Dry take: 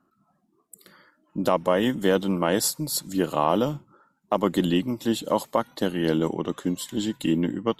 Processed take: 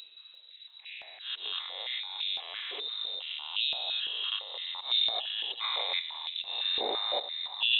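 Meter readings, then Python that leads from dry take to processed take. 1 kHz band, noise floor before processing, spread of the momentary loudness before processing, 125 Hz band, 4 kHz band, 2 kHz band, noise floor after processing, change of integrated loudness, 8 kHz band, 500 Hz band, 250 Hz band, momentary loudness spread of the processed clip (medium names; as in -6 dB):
-13.0 dB, -69 dBFS, 6 LU, under -40 dB, +8.0 dB, -2.5 dB, -54 dBFS, -6.0 dB, under -40 dB, -19.0 dB, under -30 dB, 15 LU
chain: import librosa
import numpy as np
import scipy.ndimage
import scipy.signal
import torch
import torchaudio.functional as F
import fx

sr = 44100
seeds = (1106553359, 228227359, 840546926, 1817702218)

y = fx.spec_steps(x, sr, hold_ms=400)
y = fx.dereverb_blind(y, sr, rt60_s=1.8)
y = fx.high_shelf(y, sr, hz=2000.0, db=6.5)
y = fx.over_compress(y, sr, threshold_db=-39.0, ratio=-1.0)
y = fx.auto_swell(y, sr, attack_ms=117.0)
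y = fx.dmg_noise_colour(y, sr, seeds[0], colour='brown', level_db=-57.0)
y = fx.freq_invert(y, sr, carrier_hz=3900)
y = fx.echo_feedback(y, sr, ms=350, feedback_pct=34, wet_db=-15.0)
y = fx.filter_held_highpass(y, sr, hz=5.9, low_hz=410.0, high_hz=2700.0)
y = y * librosa.db_to_amplitude(2.0)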